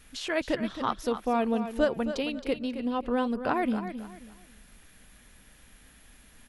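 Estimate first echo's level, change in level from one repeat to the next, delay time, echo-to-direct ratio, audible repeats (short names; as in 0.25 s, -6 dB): -10.5 dB, -11.0 dB, 0.269 s, -10.0 dB, 3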